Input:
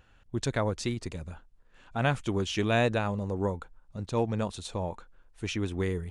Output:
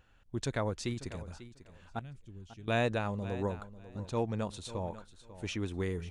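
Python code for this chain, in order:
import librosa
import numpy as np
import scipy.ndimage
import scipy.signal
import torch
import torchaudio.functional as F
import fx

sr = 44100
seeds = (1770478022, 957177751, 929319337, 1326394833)

y = fx.tone_stack(x, sr, knobs='10-0-1', at=(1.99, 2.68))
y = fx.echo_feedback(y, sr, ms=544, feedback_pct=17, wet_db=-15.0)
y = y * librosa.db_to_amplitude(-4.5)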